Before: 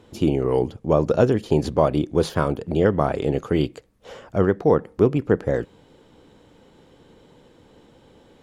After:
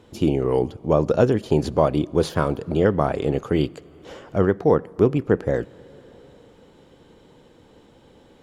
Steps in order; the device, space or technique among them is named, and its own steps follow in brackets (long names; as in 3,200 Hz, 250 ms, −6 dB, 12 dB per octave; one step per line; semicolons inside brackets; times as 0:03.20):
compressed reverb return (on a send at −13 dB: convolution reverb RT60 2.5 s, pre-delay 54 ms + downward compressor 6 to 1, threshold −30 dBFS, peak gain reduction 15.5 dB)